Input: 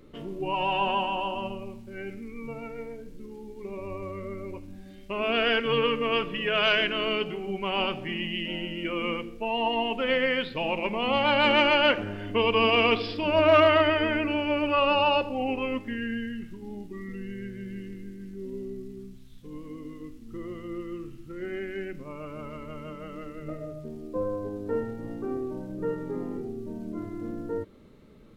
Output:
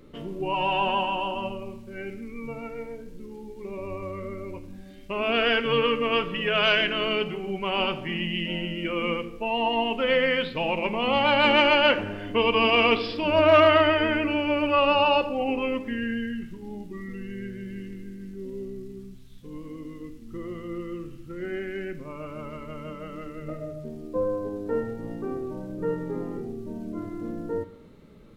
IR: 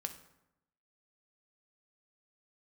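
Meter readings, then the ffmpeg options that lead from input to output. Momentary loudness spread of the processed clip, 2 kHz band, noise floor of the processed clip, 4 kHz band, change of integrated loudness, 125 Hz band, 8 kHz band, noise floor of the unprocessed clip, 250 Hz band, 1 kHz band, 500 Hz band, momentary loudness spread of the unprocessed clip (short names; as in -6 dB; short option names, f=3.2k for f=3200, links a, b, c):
19 LU, +2.0 dB, -44 dBFS, +1.5 dB, +2.0 dB, +2.0 dB, n/a, -46 dBFS, +2.0 dB, +2.0 dB, +2.0 dB, 19 LU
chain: -filter_complex "[0:a]asplit=2[a][b];[1:a]atrim=start_sample=2205[c];[b][c]afir=irnorm=-1:irlink=0,volume=1.5dB[d];[a][d]amix=inputs=2:normalize=0,volume=-4dB"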